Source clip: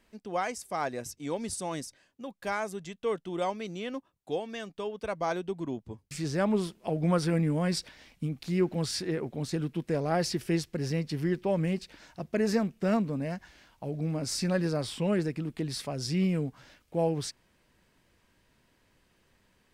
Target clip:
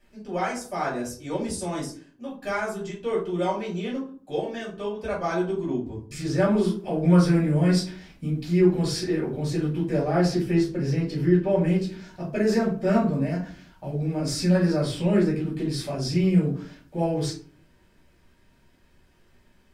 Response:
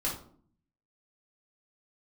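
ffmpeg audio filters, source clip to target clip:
-filter_complex "[0:a]asettb=1/sr,asplit=3[a][b][c];[a]atrim=end=10.034[d];[b]atrim=start=10.03:end=11.66,asetpts=PTS-STARTPTS,afade=t=in:d=0.004:c=qsin,afade=t=out:st=1.626:d=0.004:c=qsin,highshelf=f=4.3k:g=-6.5[e];[c]atrim=start=11.656[f];[d][e]acrossfade=d=0.004:c1=hsin:c2=qsin[g];[g][f]acrossfade=d=0.004:c1=qsin:c2=hsin[h];[1:a]atrim=start_sample=2205,asetrate=52920,aresample=44100[i];[h][i]afir=irnorm=-1:irlink=0"

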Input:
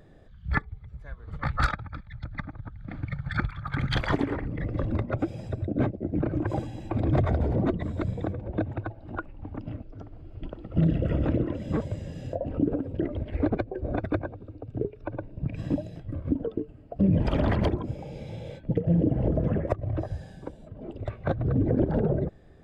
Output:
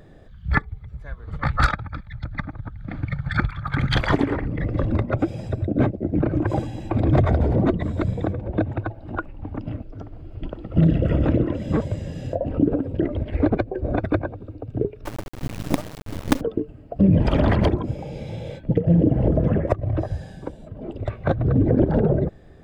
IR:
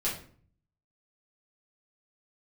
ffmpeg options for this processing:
-filter_complex "[0:a]asettb=1/sr,asplit=3[a][b][c];[a]atrim=end=15.054[d];[b]atrim=start=15.05:end=16.41,asetpts=PTS-STARTPTS,afade=t=in:d=0.004:c=qsin,afade=t=out:st=1.356:d=0.004:c=qsin,acrusher=bits=4:dc=4:mix=0:aa=0.000001[e];[c]atrim=start=16.406[f];[d][e]acrossfade=d=0.004:c1=hsin:c2=qsin[g];[g][f]acrossfade=d=0.004:c1=qsin:c2=hsin,volume=6dB"

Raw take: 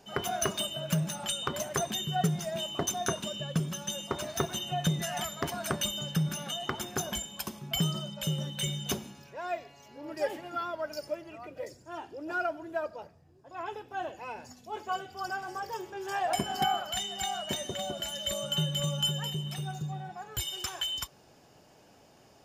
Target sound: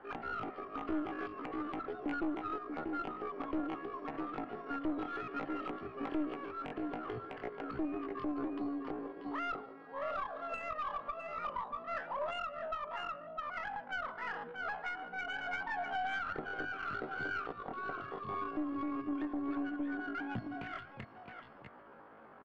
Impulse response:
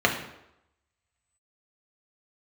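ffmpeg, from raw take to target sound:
-filter_complex "[0:a]aecho=1:1:644:0.398,asplit=2[a][b];[1:a]atrim=start_sample=2205,lowpass=2.1k,lowshelf=f=230:g=4[c];[b][c]afir=irnorm=-1:irlink=0,volume=-32.5dB[d];[a][d]amix=inputs=2:normalize=0,asetrate=85689,aresample=44100,atempo=0.514651,acrossover=split=430[e][f];[f]acompressor=threshold=-34dB:ratio=6[g];[e][g]amix=inputs=2:normalize=0,bass=f=250:g=-5,treble=f=4k:g=-15,asplit=2[h][i];[i]aecho=0:1:150:0.0891[j];[h][j]amix=inputs=2:normalize=0,aeval=exprs='(tanh(31.6*val(0)+0.65)-tanh(0.65))/31.6':c=same,highshelf=f=4.2k:g=-4.5,aeval=exprs='0.0531*(cos(1*acos(clip(val(0)/0.0531,-1,1)))-cos(1*PI/2))+0.00237*(cos(6*acos(clip(val(0)/0.0531,-1,1)))-cos(6*PI/2))':c=same,alimiter=level_in=11dB:limit=-24dB:level=0:latency=1:release=425,volume=-11dB,aresample=11025,aresample=44100,adynamicsmooth=sensitivity=6:basefreq=2.1k,volume=8.5dB"

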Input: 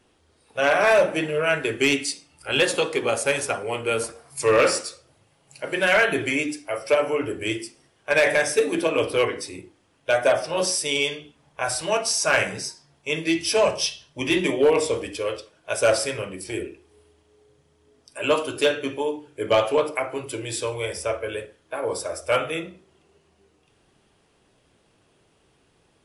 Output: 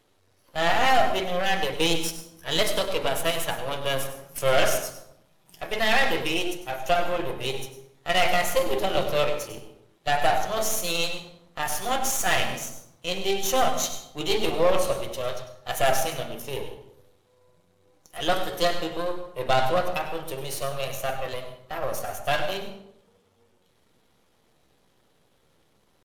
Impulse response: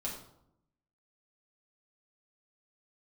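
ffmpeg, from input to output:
-filter_complex "[0:a]aeval=exprs='if(lt(val(0),0),0.251*val(0),val(0))':c=same,asetrate=52444,aresample=44100,atempo=0.840896,asplit=2[a][b];[1:a]atrim=start_sample=2205,adelay=96[c];[b][c]afir=irnorm=-1:irlink=0,volume=-10dB[d];[a][d]amix=inputs=2:normalize=0"

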